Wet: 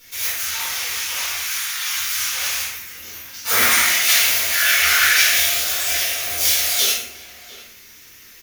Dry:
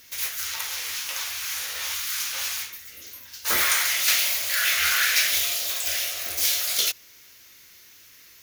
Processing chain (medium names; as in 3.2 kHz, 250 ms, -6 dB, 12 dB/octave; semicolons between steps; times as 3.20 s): 1.42–1.96 s: high-pass 980 Hz 24 dB/octave; echo from a far wall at 120 m, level -15 dB; reverberation, pre-delay 3 ms, DRR -9.5 dB; trim -4.5 dB